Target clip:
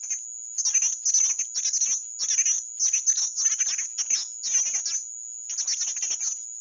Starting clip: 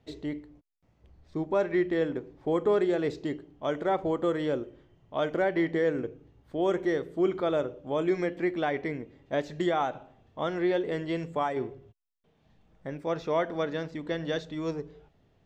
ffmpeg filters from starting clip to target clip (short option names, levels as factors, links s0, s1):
-filter_complex "[0:a]acrossover=split=280|570|2100[s0][s1][s2][s3];[s2]acompressor=threshold=0.00562:ratio=6[s4];[s0][s1][s4][s3]amix=inputs=4:normalize=0,aeval=exprs='val(0)+0.00891*(sin(2*PI*50*n/s)+sin(2*PI*2*50*n/s)/2+sin(2*PI*3*50*n/s)/3+sin(2*PI*4*50*n/s)/4+sin(2*PI*5*50*n/s)/5)':c=same,lowpass=f=2600:t=q:w=0.5098,lowpass=f=2600:t=q:w=0.6013,lowpass=f=2600:t=q:w=0.9,lowpass=f=2600:t=q:w=2.563,afreqshift=-3000,asetrate=103194,aresample=44100,volume=1.78" -ar 24000 -c:a mp2 -b:a 128k